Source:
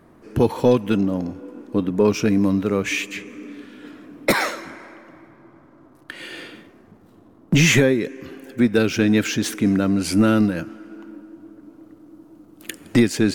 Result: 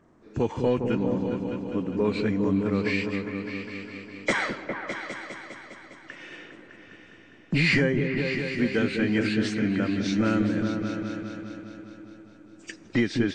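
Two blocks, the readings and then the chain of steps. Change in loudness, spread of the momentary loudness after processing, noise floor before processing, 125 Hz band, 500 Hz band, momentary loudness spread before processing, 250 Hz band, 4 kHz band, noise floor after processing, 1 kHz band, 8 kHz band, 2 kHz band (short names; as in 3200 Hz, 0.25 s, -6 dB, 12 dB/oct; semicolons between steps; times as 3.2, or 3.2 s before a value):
-7.0 dB, 19 LU, -51 dBFS, -5.5 dB, -6.0 dB, 21 LU, -6.0 dB, -7.0 dB, -52 dBFS, -5.5 dB, -16.0 dB, -3.0 dB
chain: nonlinear frequency compression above 2200 Hz 1.5:1; dynamic EQ 2000 Hz, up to +6 dB, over -39 dBFS, Q 1.6; repeats that get brighter 0.203 s, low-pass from 400 Hz, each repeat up 2 oct, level -3 dB; gain -8.5 dB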